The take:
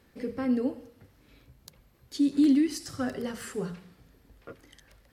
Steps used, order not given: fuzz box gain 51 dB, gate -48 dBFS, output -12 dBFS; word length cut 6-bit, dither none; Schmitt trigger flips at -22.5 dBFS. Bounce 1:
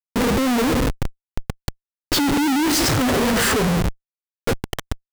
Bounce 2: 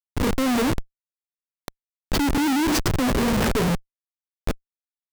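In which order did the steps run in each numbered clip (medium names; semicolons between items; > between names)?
fuzz box > word length cut > Schmitt trigger; word length cut > fuzz box > Schmitt trigger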